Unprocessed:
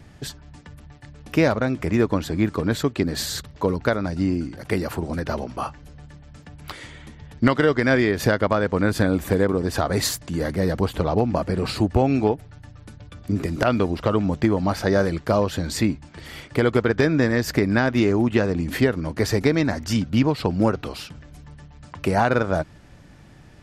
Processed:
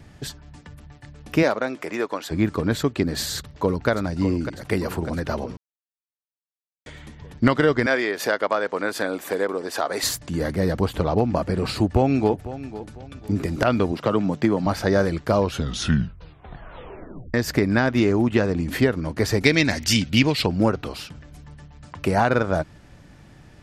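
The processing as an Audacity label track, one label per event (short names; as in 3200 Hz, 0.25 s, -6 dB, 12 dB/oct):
1.420000	2.300000	HPF 290 Hz -> 610 Hz
3.360000	3.890000	echo throw 0.6 s, feedback 65%, level -9.5 dB
5.570000	6.860000	mute
7.860000	10.030000	HPF 440 Hz
11.750000	12.330000	echo throw 0.5 s, feedback 35%, level -14.5 dB
13.920000	14.660000	HPF 120 Hz 24 dB/oct
15.350000	15.350000	tape stop 1.99 s
19.440000	20.460000	resonant high shelf 1700 Hz +9 dB, Q 1.5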